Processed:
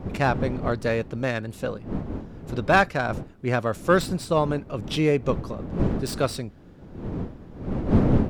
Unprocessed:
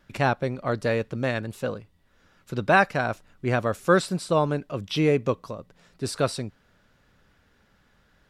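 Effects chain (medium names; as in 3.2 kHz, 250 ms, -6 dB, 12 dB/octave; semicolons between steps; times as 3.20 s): tracing distortion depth 0.051 ms; wind noise 250 Hz -29 dBFS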